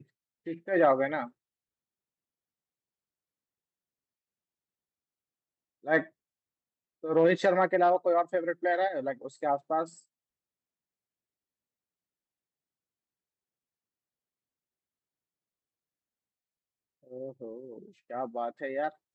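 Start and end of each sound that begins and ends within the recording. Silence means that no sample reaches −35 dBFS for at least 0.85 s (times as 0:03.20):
0:05.87–0:06.02
0:07.04–0:09.84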